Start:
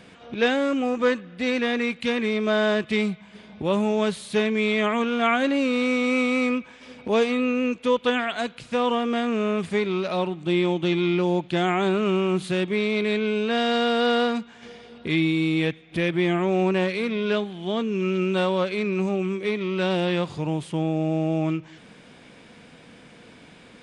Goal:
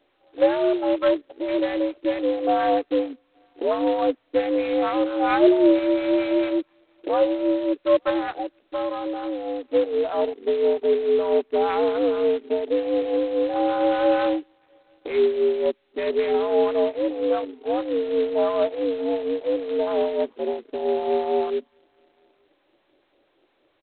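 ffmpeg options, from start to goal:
ffmpeg -i in.wav -filter_complex "[0:a]acrossover=split=720[link_01][link_02];[link_01]aeval=exprs='val(0)*(1-0.7/2+0.7/2*cos(2*PI*4.4*n/s))':channel_layout=same[link_03];[link_02]aeval=exprs='val(0)*(1-0.7/2-0.7/2*cos(2*PI*4.4*n/s))':channel_layout=same[link_04];[link_03][link_04]amix=inputs=2:normalize=0,asplit=2[link_05][link_06];[link_06]aecho=0:1:873:0.0668[link_07];[link_05][link_07]amix=inputs=2:normalize=0,afwtdn=0.0355,acrossover=split=970[link_08][link_09];[link_08]acontrast=75[link_10];[link_09]aeval=exprs='0.2*(cos(1*acos(clip(val(0)/0.2,-1,1)))-cos(1*PI/2))+0.00126*(cos(2*acos(clip(val(0)/0.2,-1,1)))-cos(2*PI/2))+0.0398*(cos(3*acos(clip(val(0)/0.2,-1,1)))-cos(3*PI/2))+0.0224*(cos(4*acos(clip(val(0)/0.2,-1,1)))-cos(4*PI/2))+0.002*(cos(5*acos(clip(val(0)/0.2,-1,1)))-cos(5*PI/2))':channel_layout=same[link_11];[link_10][link_11]amix=inputs=2:normalize=0,asettb=1/sr,asplit=3[link_12][link_13][link_14];[link_12]atrim=end=5.304[link_15];[link_13]atrim=start=5.3:end=5.79,asetpts=PTS-STARTPTS,afade=type=in:duration=0.004:curve=qsin,afade=type=out:start_time=0.486:duration=0.004:curve=qsin,lowshelf=frequency=440:gain=7.5[link_16];[link_14]atrim=start=5.786[link_17];[link_15][link_16]acrossfade=duration=0.004:curve1=hsin:curve2=qsin[link_18];[link_18][link_17]acrossfade=duration=0.004:curve1=qsin:curve2=hsin,asettb=1/sr,asplit=3[link_19][link_20][link_21];[link_19]atrim=end=8.394[link_22];[link_20]atrim=start=8.39:end=9.7,asetpts=PTS-STARTPTS,afade=type=in:duration=0.004:curve=qsin,afade=type=out:start_time=1.306:duration=0.004:curve=qsin,acompressor=threshold=-24dB:ratio=4[link_23];[link_21]atrim=start=9.696[link_24];[link_22][link_23]acrossfade=duration=0.004:curve1=hsin:curve2=qsin[link_25];[link_25][link_24]acrossfade=duration=0.004:curve1=qsin:curve2=hsin,highpass=frequency=240:width_type=q:width=0.5412,highpass=frequency=240:width_type=q:width=1.307,lowpass=frequency=2400:width_type=q:width=0.5176,lowpass=frequency=2400:width_type=q:width=0.7071,lowpass=frequency=2400:width_type=q:width=1.932,afreqshift=82" -ar 8000 -c:a adpcm_g726 -b:a 16k out.wav

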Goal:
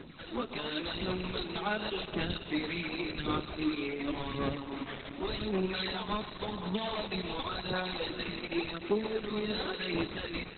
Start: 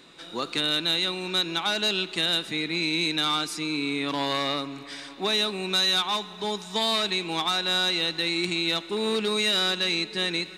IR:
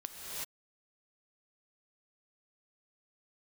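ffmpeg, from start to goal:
-filter_complex "[0:a]bandreject=frequency=3700:width=16,acompressor=threshold=-32dB:ratio=6,asplit=2[link_01][link_02];[link_02]acrusher=samples=31:mix=1:aa=0.000001:lfo=1:lforange=49.6:lforate=0.99,volume=-3dB[link_03];[link_01][link_03]amix=inputs=2:normalize=0,asoftclip=type=tanh:threshold=-19.5dB,aphaser=in_gain=1:out_gain=1:delay=4.9:decay=0.6:speed=0.9:type=sinusoidal,asplit=2[link_04][link_05];[1:a]atrim=start_sample=2205,adelay=132[link_06];[link_05][link_06]afir=irnorm=-1:irlink=0,volume=-10dB[link_07];[link_04][link_07]amix=inputs=2:normalize=0,volume=-2.5dB" -ar 48000 -c:a libopus -b:a 8k

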